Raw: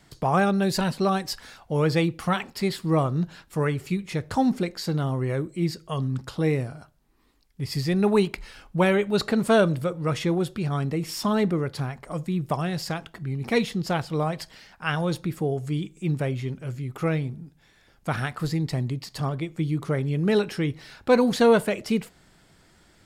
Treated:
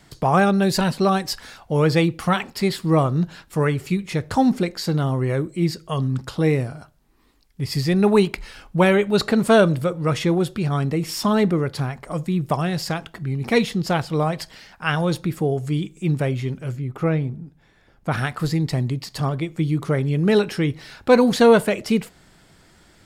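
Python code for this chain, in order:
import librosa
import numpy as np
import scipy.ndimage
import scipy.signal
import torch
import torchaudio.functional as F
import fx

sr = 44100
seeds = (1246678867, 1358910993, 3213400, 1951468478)

y = fx.high_shelf(x, sr, hz=2500.0, db=-11.0, at=(16.75, 18.11), fade=0.02)
y = F.gain(torch.from_numpy(y), 4.5).numpy()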